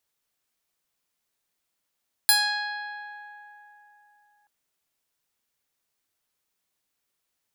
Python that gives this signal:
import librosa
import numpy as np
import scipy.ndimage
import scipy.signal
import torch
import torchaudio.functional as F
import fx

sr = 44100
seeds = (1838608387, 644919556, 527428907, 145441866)

y = fx.pluck(sr, length_s=2.18, note=80, decay_s=3.52, pick=0.31, brightness='bright')